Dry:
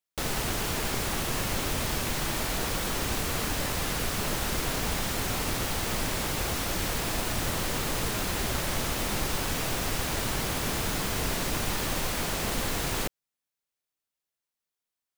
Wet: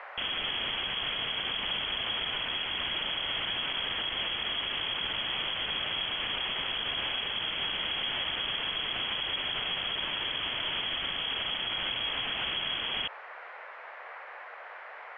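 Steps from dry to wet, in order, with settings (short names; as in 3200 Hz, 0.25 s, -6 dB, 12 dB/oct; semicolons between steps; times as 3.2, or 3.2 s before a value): inverted band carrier 3300 Hz; band noise 520–2100 Hz -45 dBFS; limiter -23.5 dBFS, peak gain reduction 8.5 dB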